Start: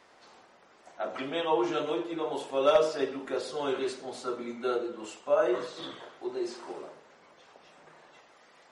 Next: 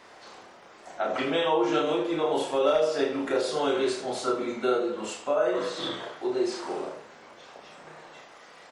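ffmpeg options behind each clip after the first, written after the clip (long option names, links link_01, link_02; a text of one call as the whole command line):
ffmpeg -i in.wav -filter_complex "[0:a]acompressor=threshold=-30dB:ratio=4,asplit=2[link_01][link_02];[link_02]aecho=0:1:32|79:0.668|0.316[link_03];[link_01][link_03]amix=inputs=2:normalize=0,volume=6.5dB" out.wav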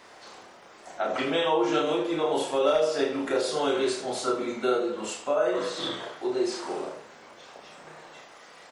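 ffmpeg -i in.wav -af "highshelf=frequency=5800:gain=5" out.wav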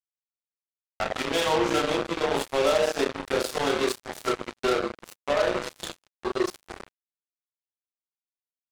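ffmpeg -i in.wav -af "acrusher=bits=3:mix=0:aa=0.5" out.wav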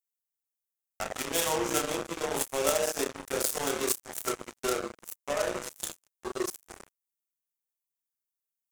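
ffmpeg -i in.wav -af "aexciter=amount=5:drive=4.6:freq=5900,aeval=exprs='0.501*(cos(1*acos(clip(val(0)/0.501,-1,1)))-cos(1*PI/2))+0.126*(cos(3*acos(clip(val(0)/0.501,-1,1)))-cos(3*PI/2))':channel_layout=same,volume=3.5dB" out.wav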